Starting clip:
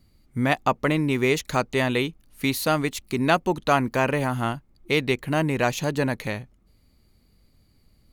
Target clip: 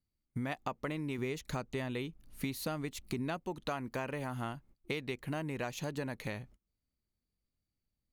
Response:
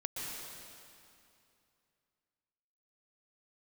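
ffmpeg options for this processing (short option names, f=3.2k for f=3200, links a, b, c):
-filter_complex "[0:a]asettb=1/sr,asplit=3[a][b][c];[a]atrim=end=1.184[d];[b]atrim=start=1.18:end=3.4,asetpts=PTS-STARTPTS,afade=t=in:d=0.004:c=qsin,afade=t=out:st=2.216:d=0.004:c=qsin,lowshelf=f=330:g=6[e];[c]atrim=start=3.396[f];[d][e]acrossfade=d=0.004:c1=hsin:c2=qsin[g];[g][f]acrossfade=d=0.004:c1=qsin:c2=hsin,agate=range=-23dB:threshold=-48dB:ratio=16:detection=peak,acompressor=threshold=-30dB:ratio=6,volume=-4.5dB"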